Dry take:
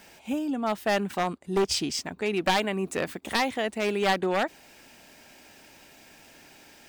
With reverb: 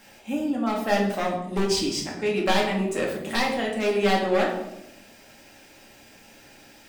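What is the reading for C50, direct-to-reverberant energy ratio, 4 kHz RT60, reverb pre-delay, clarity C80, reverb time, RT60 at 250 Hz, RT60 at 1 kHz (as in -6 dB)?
5.0 dB, -2.5 dB, 0.60 s, 4 ms, 7.5 dB, 0.90 s, 1.3 s, 0.80 s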